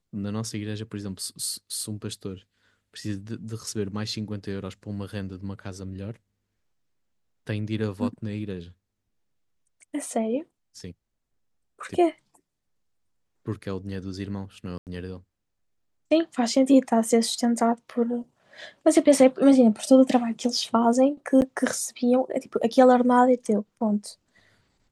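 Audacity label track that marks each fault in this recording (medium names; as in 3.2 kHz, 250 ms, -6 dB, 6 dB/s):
14.780000	14.870000	dropout 88 ms
21.410000	21.420000	dropout 9.6 ms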